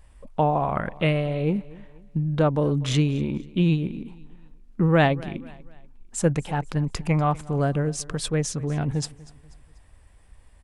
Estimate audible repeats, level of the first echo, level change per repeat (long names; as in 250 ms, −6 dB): 2, −21.0 dB, −7.5 dB